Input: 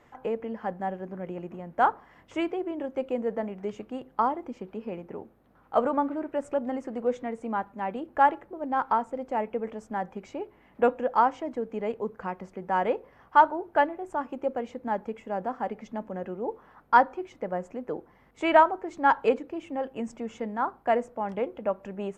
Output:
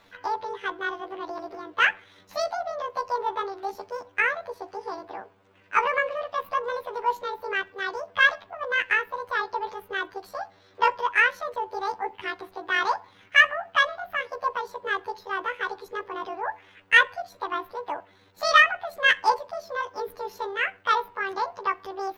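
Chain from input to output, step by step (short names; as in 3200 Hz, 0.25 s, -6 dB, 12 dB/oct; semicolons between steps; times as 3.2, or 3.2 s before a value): delay-line pitch shifter +11.5 st; gain +2.5 dB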